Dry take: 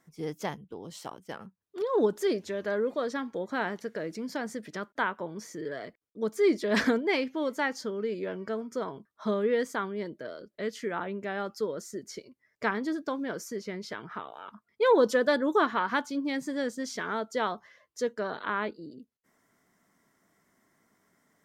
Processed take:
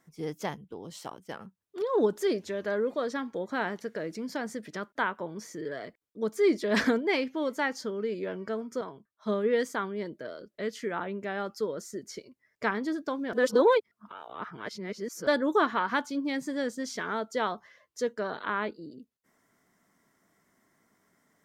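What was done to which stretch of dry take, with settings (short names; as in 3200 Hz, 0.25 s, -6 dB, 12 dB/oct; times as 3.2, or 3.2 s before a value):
8.81–9.69 three-band expander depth 70%
13.33–15.27 reverse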